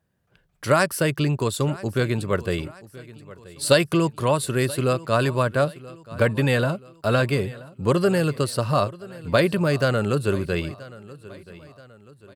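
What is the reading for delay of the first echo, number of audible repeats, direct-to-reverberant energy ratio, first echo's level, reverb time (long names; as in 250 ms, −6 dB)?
979 ms, 3, no reverb audible, −19.5 dB, no reverb audible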